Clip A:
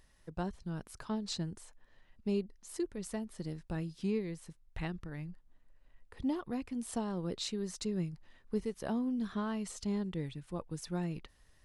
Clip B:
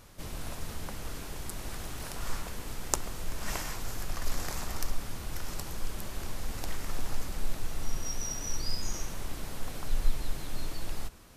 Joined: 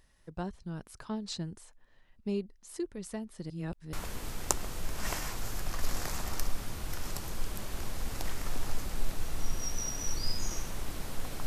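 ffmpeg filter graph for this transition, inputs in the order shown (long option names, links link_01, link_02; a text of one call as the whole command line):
ffmpeg -i cue0.wav -i cue1.wav -filter_complex "[0:a]apad=whole_dur=11.46,atrim=end=11.46,asplit=2[link_01][link_02];[link_01]atrim=end=3.502[link_03];[link_02]atrim=start=3.498:end=3.932,asetpts=PTS-STARTPTS,areverse[link_04];[1:a]atrim=start=2.358:end=9.89[link_05];[link_03][link_04]acrossfade=duration=0.004:curve1=hsin:curve2=hsin[link_06];[link_06][link_05]acrossfade=duration=0.004:curve1=hsin:curve2=hsin" out.wav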